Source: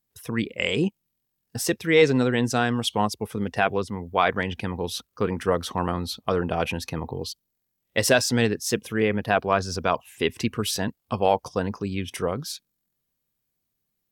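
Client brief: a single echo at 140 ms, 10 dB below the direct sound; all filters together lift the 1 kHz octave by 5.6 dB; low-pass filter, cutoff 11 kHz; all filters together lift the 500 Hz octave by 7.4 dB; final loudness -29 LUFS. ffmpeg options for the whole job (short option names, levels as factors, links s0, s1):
-af "lowpass=11000,equalizer=f=500:t=o:g=7.5,equalizer=f=1000:t=o:g=4.5,aecho=1:1:140:0.316,volume=0.355"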